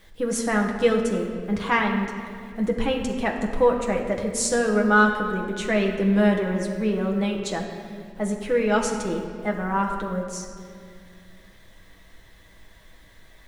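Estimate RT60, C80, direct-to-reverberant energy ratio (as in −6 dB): 2.3 s, 6.0 dB, 0.0 dB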